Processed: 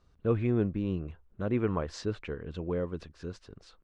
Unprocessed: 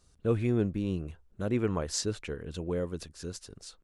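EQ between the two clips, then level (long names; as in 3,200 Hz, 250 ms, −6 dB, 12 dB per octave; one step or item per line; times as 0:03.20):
low-pass filter 2,900 Hz 12 dB per octave
parametric band 1,100 Hz +3 dB 0.39 octaves
0.0 dB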